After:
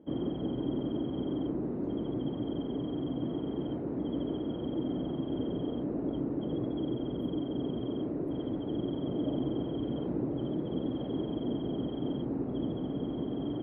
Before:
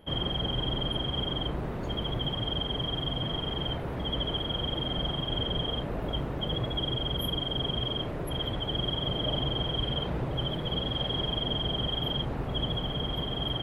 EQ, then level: band-pass 290 Hz, Q 3.1; +8.5 dB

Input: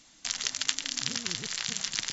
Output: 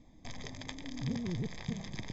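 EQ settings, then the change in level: running mean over 31 samples; low shelf 150 Hz +11.5 dB; +4.0 dB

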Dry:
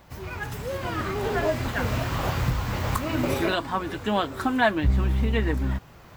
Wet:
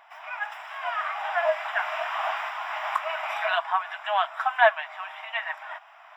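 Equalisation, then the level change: polynomial smoothing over 25 samples; brick-wall FIR high-pass 610 Hz; +3.5 dB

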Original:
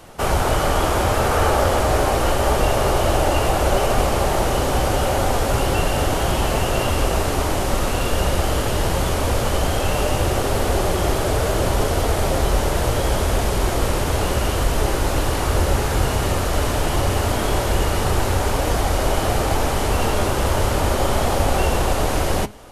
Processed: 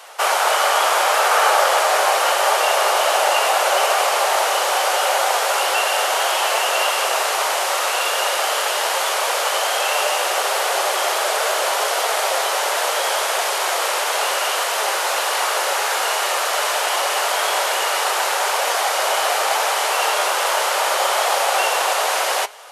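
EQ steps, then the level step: Bessel high-pass 880 Hz, order 8; high shelf 9400 Hz -4.5 dB; +8.0 dB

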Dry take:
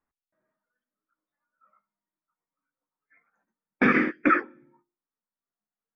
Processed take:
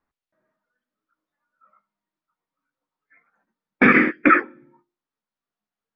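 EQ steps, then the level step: LPF 4300 Hz 12 dB/oct; dynamic EQ 2200 Hz, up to +4 dB, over -37 dBFS, Q 2.3; +5.5 dB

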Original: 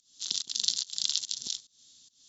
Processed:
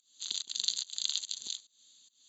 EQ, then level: HPF 490 Hz 6 dB/oct; Butterworth band-stop 5400 Hz, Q 3.4; -1.5 dB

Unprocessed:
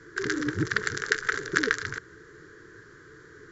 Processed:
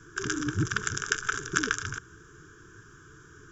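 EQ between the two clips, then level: low shelf 140 Hz +6 dB; high shelf 4200 Hz +8.5 dB; fixed phaser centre 2900 Hz, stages 8; 0.0 dB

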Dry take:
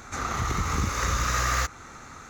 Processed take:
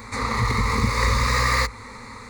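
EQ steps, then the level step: ripple EQ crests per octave 0.94, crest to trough 15 dB; +3.5 dB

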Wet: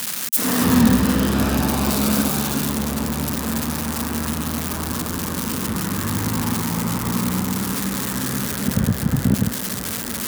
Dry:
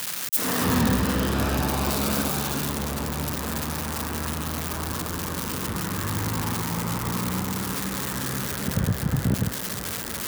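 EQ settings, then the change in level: bell 230 Hz +8 dB 0.54 oct; bell 11000 Hz +3 dB 1.8 oct; +2.5 dB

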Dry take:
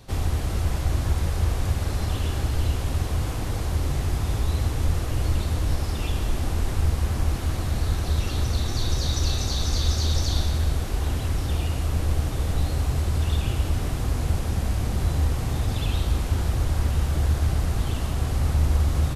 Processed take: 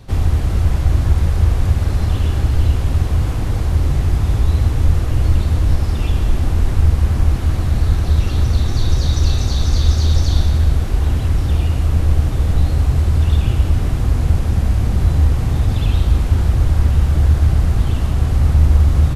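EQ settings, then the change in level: low shelf 350 Hz +11 dB; bell 1700 Hz +4.5 dB 2.7 oct; -1.0 dB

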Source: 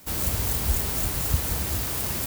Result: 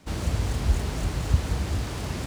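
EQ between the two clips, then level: air absorption 85 m; low shelf 470 Hz +5 dB; -1.5 dB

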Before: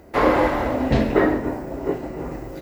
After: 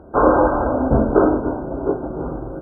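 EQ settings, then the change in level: dynamic EQ 160 Hz, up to -4 dB, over -32 dBFS, Q 1.2; brick-wall FIR band-stop 1600–8200 Hz; air absorption 150 m; +4.5 dB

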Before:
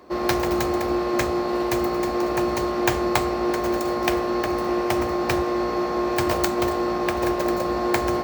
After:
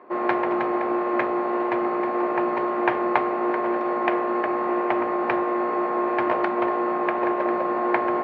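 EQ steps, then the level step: air absorption 68 m; speaker cabinet 180–2200 Hz, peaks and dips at 250 Hz +3 dB, 400 Hz +4 dB, 650 Hz +3 dB, 970 Hz +5 dB; tilt +2.5 dB/oct; 0.0 dB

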